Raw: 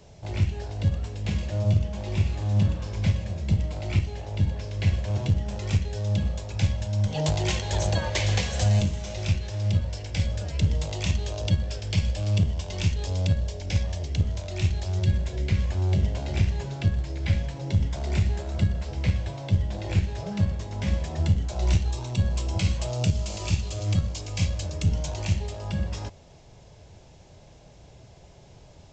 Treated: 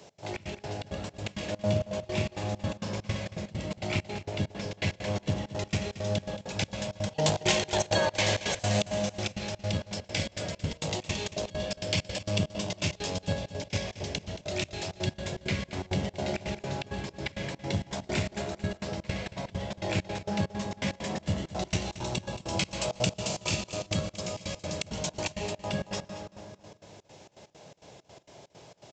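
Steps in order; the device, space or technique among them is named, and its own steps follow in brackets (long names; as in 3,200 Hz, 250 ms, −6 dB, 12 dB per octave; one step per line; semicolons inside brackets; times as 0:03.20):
high-pass filter 170 Hz 12 dB per octave
low-shelf EQ 240 Hz −5 dB
comb and all-pass reverb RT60 2.5 s, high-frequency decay 0.3×, pre-delay 85 ms, DRR 7.5 dB
trance gate with a delay (gate pattern "x.xx.x.x" 165 BPM −24 dB; repeating echo 226 ms, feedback 30%, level −15 dB)
level +4 dB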